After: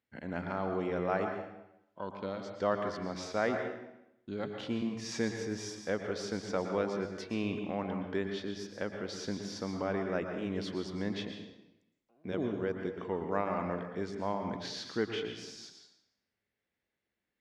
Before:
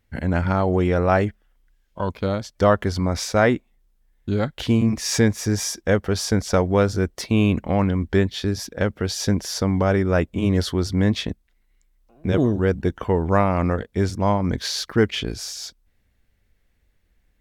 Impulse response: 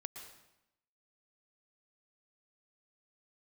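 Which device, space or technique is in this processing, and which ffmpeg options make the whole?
supermarket ceiling speaker: -filter_complex "[0:a]highpass=200,lowpass=5200[link_01];[1:a]atrim=start_sample=2205[link_02];[link_01][link_02]afir=irnorm=-1:irlink=0,volume=-9dB"

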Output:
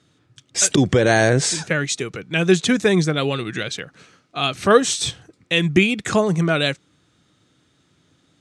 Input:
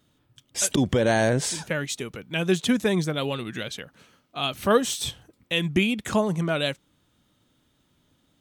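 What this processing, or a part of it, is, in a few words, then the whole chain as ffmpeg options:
car door speaker: -af "highpass=100,equalizer=frequency=230:width_type=q:width=4:gain=-7,equalizer=frequency=580:width_type=q:width=4:gain=-5,equalizer=frequency=930:width_type=q:width=4:gain=-7,equalizer=frequency=3100:width_type=q:width=4:gain=-5,lowpass=frequency=8500:width=0.5412,lowpass=frequency=8500:width=1.3066,volume=8.5dB"

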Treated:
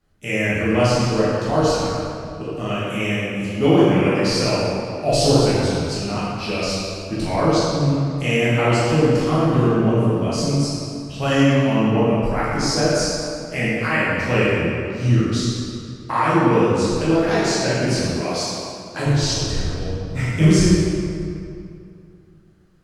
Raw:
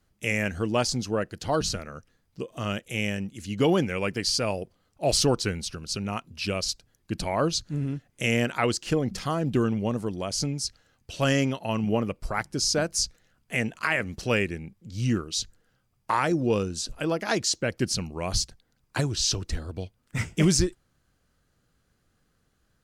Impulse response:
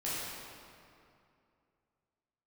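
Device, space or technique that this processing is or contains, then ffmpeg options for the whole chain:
swimming-pool hall: -filter_complex "[1:a]atrim=start_sample=2205[link_01];[0:a][link_01]afir=irnorm=-1:irlink=0,highshelf=frequency=4300:gain=-6.5,asettb=1/sr,asplit=3[link_02][link_03][link_04];[link_02]atrim=end=18.214[link_05];[link_03]atrim=start=18.21:end=19.06,asetpts=PTS-STARTPTS,afade=type=in:duration=0.004:curve=qsin,afade=type=out:start_time=0.846:duration=0.004:curve=qsin,highpass=200[link_06];[link_04]atrim=start=19.056[link_07];[link_05][link_06]acrossfade=duration=0.004:curve1=hsin:curve2=qsin[link_08];[link_08][link_07]acrossfade=duration=0.004:curve1=qsin:curve2=hsin,volume=3dB"

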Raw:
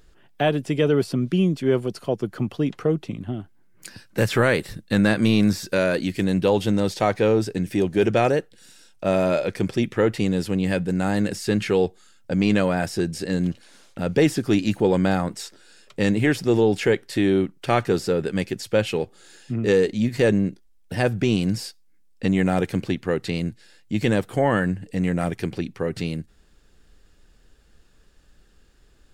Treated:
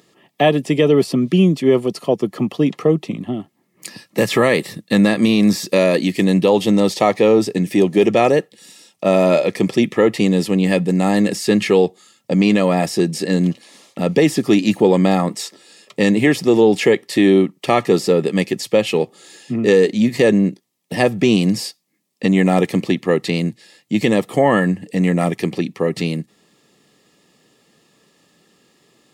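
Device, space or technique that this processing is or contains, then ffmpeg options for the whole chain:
PA system with an anti-feedback notch: -af "highpass=frequency=150:width=0.5412,highpass=frequency=150:width=1.3066,asuperstop=centerf=1500:order=8:qfactor=5.2,alimiter=limit=-11dB:level=0:latency=1:release=180,volume=7.5dB"

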